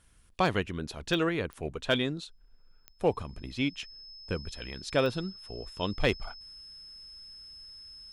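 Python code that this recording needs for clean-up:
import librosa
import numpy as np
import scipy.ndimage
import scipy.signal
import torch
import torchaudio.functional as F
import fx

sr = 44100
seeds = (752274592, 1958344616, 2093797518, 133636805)

y = fx.fix_declip(x, sr, threshold_db=-15.0)
y = fx.fix_declick_ar(y, sr, threshold=10.0)
y = fx.notch(y, sr, hz=5200.0, q=30.0)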